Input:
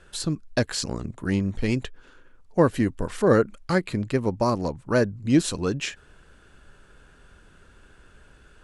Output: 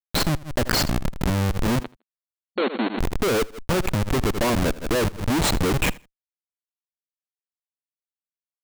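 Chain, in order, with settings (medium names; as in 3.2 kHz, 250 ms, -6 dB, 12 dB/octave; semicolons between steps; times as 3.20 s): resonances exaggerated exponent 2; Schmitt trigger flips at -28.5 dBFS; 1.80–2.98 s: brick-wall FIR band-pass 200–4400 Hz; on a send: feedback delay 80 ms, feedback 20%, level -22.5 dB; on the sum: swell ahead of each attack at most 120 dB/s; trim +6 dB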